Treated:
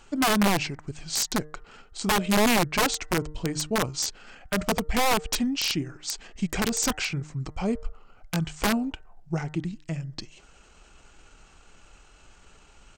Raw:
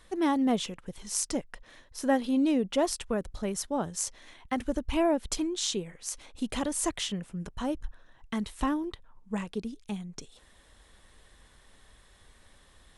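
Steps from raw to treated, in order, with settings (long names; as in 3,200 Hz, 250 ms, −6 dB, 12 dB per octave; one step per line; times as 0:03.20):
hum removal 197.6 Hz, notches 13
wrap-around overflow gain 21 dB
pitch shifter −4.5 semitones
level +5 dB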